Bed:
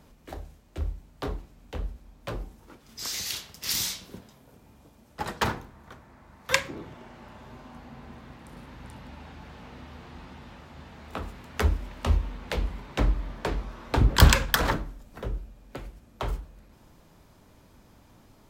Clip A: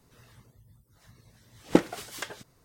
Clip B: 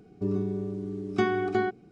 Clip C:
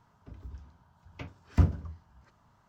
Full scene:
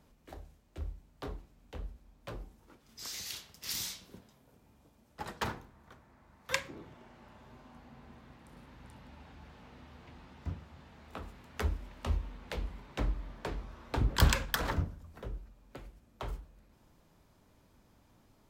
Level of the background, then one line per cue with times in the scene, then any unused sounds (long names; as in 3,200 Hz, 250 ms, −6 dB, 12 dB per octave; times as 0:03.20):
bed −9 dB
0:08.88: mix in C −16.5 dB
0:13.19: mix in C −11 dB
not used: A, B